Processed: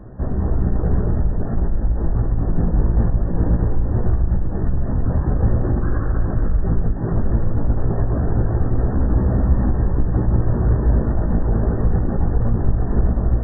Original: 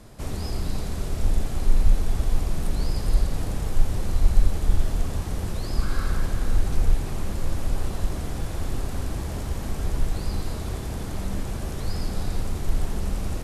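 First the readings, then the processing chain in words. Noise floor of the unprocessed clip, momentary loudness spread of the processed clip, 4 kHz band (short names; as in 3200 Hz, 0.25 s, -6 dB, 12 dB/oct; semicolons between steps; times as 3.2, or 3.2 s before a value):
-31 dBFS, 4 LU, under -40 dB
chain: tracing distortion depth 0.37 ms; reverb removal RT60 0.71 s; tilt shelf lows +6 dB, about 740 Hz; compressor 2.5:1, threshold -14 dBFS, peak gain reduction 8.5 dB; limiter -16 dBFS, peak gain reduction 10 dB; AGC gain up to 5 dB; one-sided clip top -20 dBFS, bottom -13 dBFS; chorus 0.21 Hz, delay 16 ms, depth 2.1 ms; brick-wall FIR low-pass 1900 Hz; spring tank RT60 3.8 s, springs 35 ms, chirp 30 ms, DRR 7 dB; gain +9 dB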